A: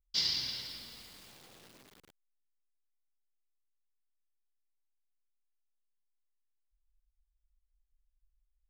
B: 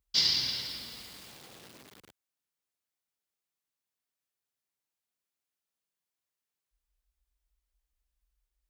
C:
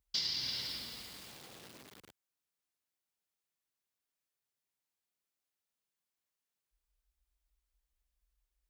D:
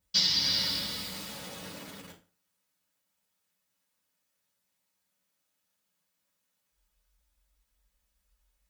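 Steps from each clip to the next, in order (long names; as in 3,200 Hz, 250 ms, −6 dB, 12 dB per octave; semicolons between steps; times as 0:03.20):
high-pass filter 57 Hz 12 dB per octave; level +5.5 dB
downward compressor 4 to 1, threshold −32 dBFS, peak gain reduction 9.5 dB; level −1.5 dB
convolution reverb RT60 0.40 s, pre-delay 3 ms, DRR −8.5 dB; level +1.5 dB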